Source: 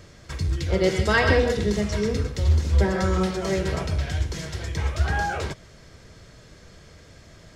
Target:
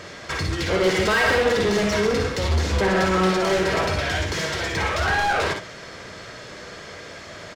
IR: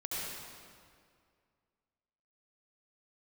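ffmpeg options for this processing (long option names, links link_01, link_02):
-filter_complex "[0:a]asplit=2[link_01][link_02];[link_02]highpass=frequency=720:poles=1,volume=29dB,asoftclip=type=tanh:threshold=-6.5dB[link_03];[link_01][link_03]amix=inputs=2:normalize=0,lowpass=frequency=2700:poles=1,volume=-6dB,aecho=1:1:54|64:0.398|0.398,volume=-6.5dB"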